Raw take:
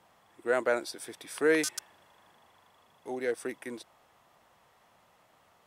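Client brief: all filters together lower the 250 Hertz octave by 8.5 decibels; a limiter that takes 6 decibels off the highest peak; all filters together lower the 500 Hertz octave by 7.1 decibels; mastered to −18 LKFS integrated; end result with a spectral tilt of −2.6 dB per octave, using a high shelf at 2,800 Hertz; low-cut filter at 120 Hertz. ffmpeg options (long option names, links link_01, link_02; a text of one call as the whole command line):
ffmpeg -i in.wav -af "highpass=120,equalizer=frequency=250:width_type=o:gain=-9,equalizer=frequency=500:width_type=o:gain=-5.5,highshelf=frequency=2800:gain=-8,volume=22dB,alimiter=limit=-3dB:level=0:latency=1" out.wav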